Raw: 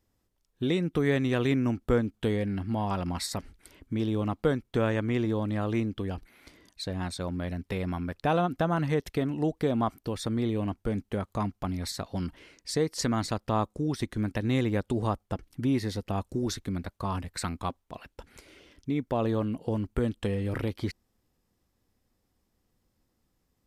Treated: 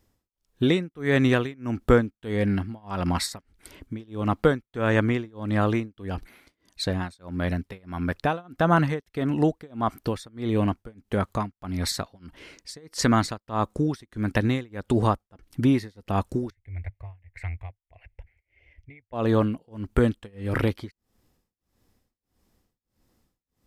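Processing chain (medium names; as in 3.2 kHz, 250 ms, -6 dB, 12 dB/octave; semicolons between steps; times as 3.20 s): dynamic bell 1.5 kHz, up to +4 dB, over -47 dBFS, Q 1.2; tremolo 1.6 Hz, depth 98%; 16.50–19.13 s: FFT filter 100 Hz 0 dB, 190 Hz -30 dB, 710 Hz -12 dB, 1.3 kHz -29 dB, 2.1 kHz 0 dB, 3.8 kHz -28 dB; trim +7.5 dB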